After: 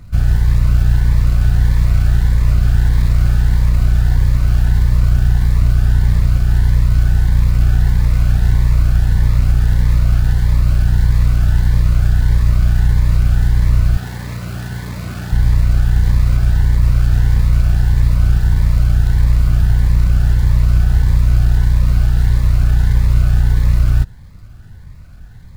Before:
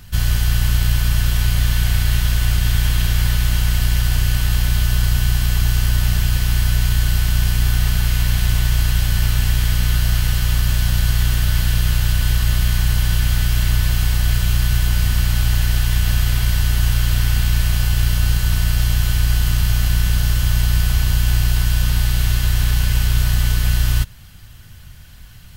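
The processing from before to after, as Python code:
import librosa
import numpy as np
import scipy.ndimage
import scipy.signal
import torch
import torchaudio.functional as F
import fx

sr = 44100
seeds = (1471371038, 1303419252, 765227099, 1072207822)

y = scipy.ndimage.median_filter(x, 15, mode='constant')
y = fx.highpass(y, sr, hz=170.0, slope=12, at=(13.97, 15.32))
y = fx.notch_cascade(y, sr, direction='rising', hz=1.6)
y = y * 10.0 ** (4.5 / 20.0)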